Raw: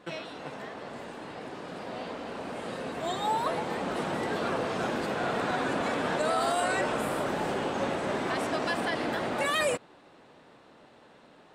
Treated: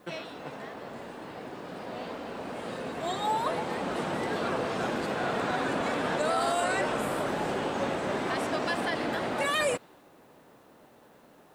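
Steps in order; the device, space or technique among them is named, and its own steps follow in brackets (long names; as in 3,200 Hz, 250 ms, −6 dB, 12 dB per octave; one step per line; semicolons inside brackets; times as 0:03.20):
plain cassette with noise reduction switched in (one half of a high-frequency compander decoder only; tape wow and flutter 26 cents; white noise bed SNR 39 dB)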